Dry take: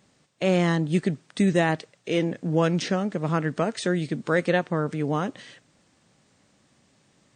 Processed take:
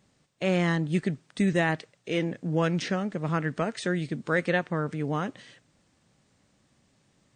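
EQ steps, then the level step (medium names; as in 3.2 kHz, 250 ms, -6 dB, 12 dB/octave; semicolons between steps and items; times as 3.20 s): dynamic bell 1.9 kHz, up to +5 dB, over -39 dBFS, Q 1; bass shelf 92 Hz +9.5 dB; -5.0 dB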